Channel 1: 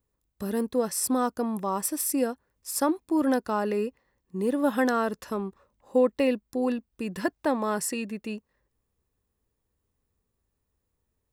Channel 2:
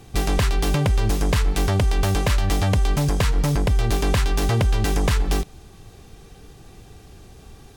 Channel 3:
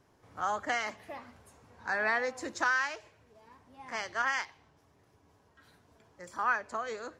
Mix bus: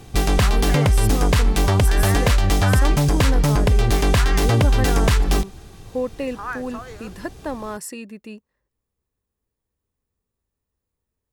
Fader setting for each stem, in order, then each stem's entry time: -3.0 dB, +3.0 dB, -1.0 dB; 0.00 s, 0.00 s, 0.00 s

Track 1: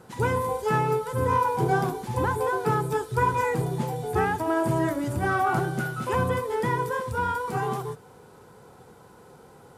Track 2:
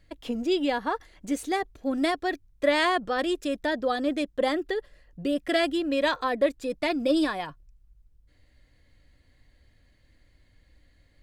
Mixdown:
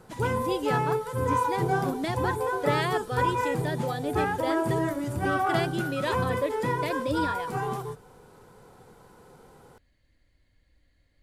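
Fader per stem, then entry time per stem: -2.5 dB, -6.0 dB; 0.00 s, 0.00 s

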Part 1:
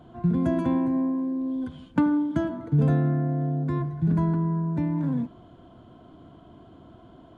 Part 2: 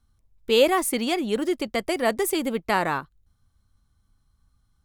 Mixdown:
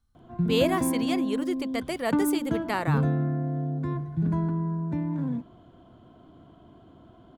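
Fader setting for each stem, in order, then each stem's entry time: -3.0 dB, -6.0 dB; 0.15 s, 0.00 s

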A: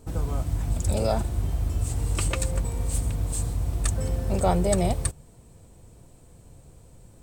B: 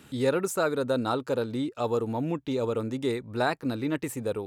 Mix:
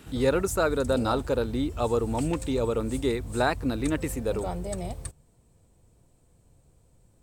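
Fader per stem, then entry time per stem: -10.5 dB, +1.5 dB; 0.00 s, 0.00 s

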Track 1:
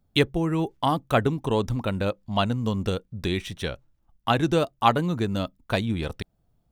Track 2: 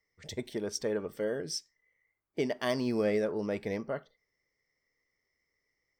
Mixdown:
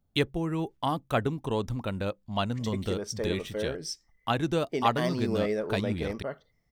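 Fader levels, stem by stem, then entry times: -5.5 dB, 0.0 dB; 0.00 s, 2.35 s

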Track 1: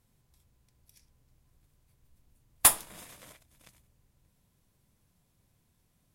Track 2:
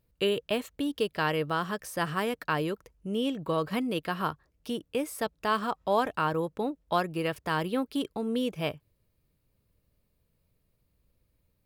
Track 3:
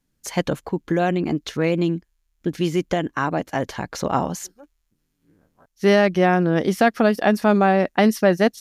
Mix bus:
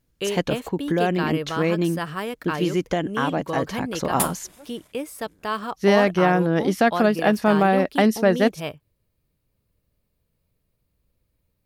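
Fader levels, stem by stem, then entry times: -5.0 dB, +0.5 dB, -1.5 dB; 1.55 s, 0.00 s, 0.00 s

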